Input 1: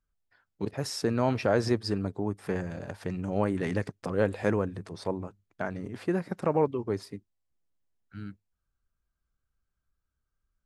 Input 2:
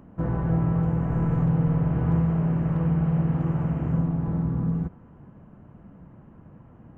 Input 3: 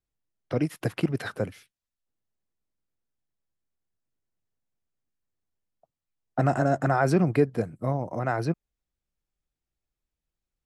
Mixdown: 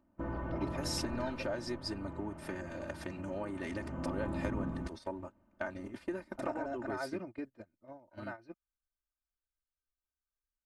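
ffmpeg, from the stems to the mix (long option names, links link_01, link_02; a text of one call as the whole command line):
ffmpeg -i stem1.wav -i stem2.wav -i stem3.wav -filter_complex "[0:a]acompressor=threshold=-31dB:ratio=10,volume=-2.5dB[link_01];[1:a]volume=4.5dB,afade=type=out:start_time=0.98:duration=0.43:silence=0.375837,afade=type=in:start_time=3.71:duration=0.53:silence=0.251189[link_02];[2:a]lowpass=4600,volume=-16.5dB[link_03];[link_01][link_02][link_03]amix=inputs=3:normalize=0,agate=range=-13dB:threshold=-40dB:ratio=16:detection=peak,lowshelf=frequency=370:gain=-6,aecho=1:1:3.3:0.86" out.wav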